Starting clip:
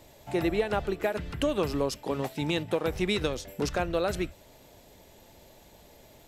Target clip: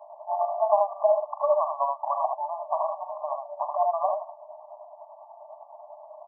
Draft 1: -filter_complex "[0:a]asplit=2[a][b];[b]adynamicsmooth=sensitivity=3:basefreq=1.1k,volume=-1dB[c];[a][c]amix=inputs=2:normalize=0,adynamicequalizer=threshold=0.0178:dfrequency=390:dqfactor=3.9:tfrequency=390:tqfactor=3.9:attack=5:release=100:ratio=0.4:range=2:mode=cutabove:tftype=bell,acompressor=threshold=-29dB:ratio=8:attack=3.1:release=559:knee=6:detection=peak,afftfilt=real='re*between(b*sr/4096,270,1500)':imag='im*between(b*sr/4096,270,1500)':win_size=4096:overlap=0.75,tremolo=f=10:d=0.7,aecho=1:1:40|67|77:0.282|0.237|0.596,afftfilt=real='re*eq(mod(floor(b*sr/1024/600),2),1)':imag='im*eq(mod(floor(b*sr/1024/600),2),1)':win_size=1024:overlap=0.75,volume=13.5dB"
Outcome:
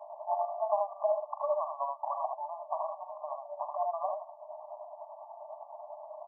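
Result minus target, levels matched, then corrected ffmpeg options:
compressor: peak gain reduction +8.5 dB
-filter_complex "[0:a]asplit=2[a][b];[b]adynamicsmooth=sensitivity=3:basefreq=1.1k,volume=-1dB[c];[a][c]amix=inputs=2:normalize=0,adynamicequalizer=threshold=0.0178:dfrequency=390:dqfactor=3.9:tfrequency=390:tqfactor=3.9:attack=5:release=100:ratio=0.4:range=2:mode=cutabove:tftype=bell,acompressor=threshold=-19.5dB:ratio=8:attack=3.1:release=559:knee=6:detection=peak,afftfilt=real='re*between(b*sr/4096,270,1500)':imag='im*between(b*sr/4096,270,1500)':win_size=4096:overlap=0.75,tremolo=f=10:d=0.7,aecho=1:1:40|67|77:0.282|0.237|0.596,afftfilt=real='re*eq(mod(floor(b*sr/1024/600),2),1)':imag='im*eq(mod(floor(b*sr/1024/600),2),1)':win_size=1024:overlap=0.75,volume=13.5dB"

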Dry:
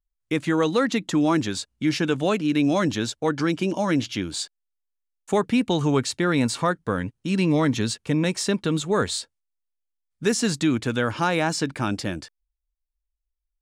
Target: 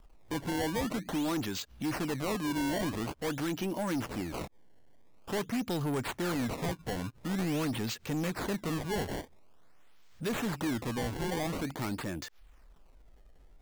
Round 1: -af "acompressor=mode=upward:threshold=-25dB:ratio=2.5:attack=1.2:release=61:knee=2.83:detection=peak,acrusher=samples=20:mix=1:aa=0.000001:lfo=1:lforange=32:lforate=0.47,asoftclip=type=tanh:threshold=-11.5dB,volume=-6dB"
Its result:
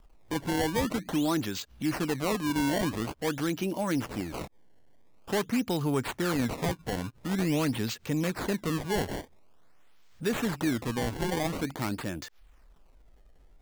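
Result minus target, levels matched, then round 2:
soft clip: distortion -13 dB
-af "acompressor=mode=upward:threshold=-25dB:ratio=2.5:attack=1.2:release=61:knee=2.83:detection=peak,acrusher=samples=20:mix=1:aa=0.000001:lfo=1:lforange=32:lforate=0.47,asoftclip=type=tanh:threshold=-22dB,volume=-6dB"

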